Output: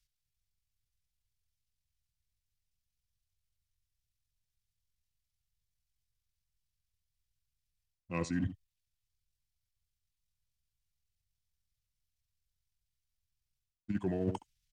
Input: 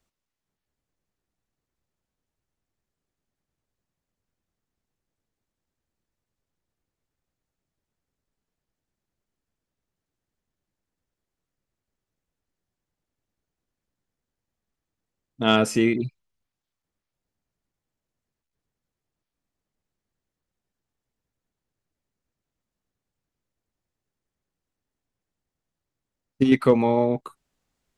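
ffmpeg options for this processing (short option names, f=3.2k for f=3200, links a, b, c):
-filter_complex "[0:a]equalizer=f=1.6k:w=0.36:g=-3.5,acrossover=split=170|2400[a][b][c];[b]aeval=exprs='sgn(val(0))*max(abs(val(0))-0.00501,0)':c=same[d];[a][d][c]amix=inputs=3:normalize=0,atempo=1.9,aecho=1:1:75:0.119,areverse,acompressor=threshold=-32dB:ratio=20,areverse,asetrate=34006,aresample=44100,atempo=1.29684,volume=2dB"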